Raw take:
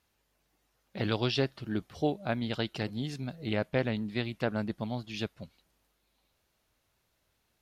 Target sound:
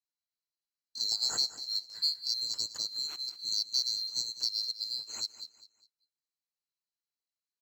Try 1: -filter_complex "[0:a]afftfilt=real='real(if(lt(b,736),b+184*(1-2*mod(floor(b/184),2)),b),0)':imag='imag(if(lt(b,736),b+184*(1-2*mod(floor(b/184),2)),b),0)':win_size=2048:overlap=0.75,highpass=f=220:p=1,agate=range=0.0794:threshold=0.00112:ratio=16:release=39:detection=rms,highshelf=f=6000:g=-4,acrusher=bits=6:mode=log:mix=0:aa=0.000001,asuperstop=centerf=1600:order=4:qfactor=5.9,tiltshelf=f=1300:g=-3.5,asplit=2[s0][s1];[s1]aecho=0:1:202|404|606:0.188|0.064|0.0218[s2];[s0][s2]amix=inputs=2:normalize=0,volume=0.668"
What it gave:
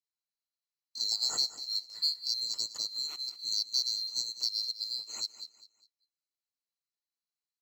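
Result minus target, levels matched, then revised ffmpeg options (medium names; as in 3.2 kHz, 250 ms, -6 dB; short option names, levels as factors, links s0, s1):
125 Hz band -4.5 dB; 2 kHz band -3.5 dB
-filter_complex "[0:a]afftfilt=real='real(if(lt(b,736),b+184*(1-2*mod(floor(b/184),2)),b),0)':imag='imag(if(lt(b,736),b+184*(1-2*mod(floor(b/184),2)),b),0)':win_size=2048:overlap=0.75,highpass=f=86:p=1,agate=range=0.0794:threshold=0.00112:ratio=16:release=39:detection=rms,highshelf=f=6000:g=-4,acrusher=bits=6:mode=log:mix=0:aa=0.000001,tiltshelf=f=1300:g=-3.5,asplit=2[s0][s1];[s1]aecho=0:1:202|404|606:0.188|0.064|0.0218[s2];[s0][s2]amix=inputs=2:normalize=0,volume=0.668"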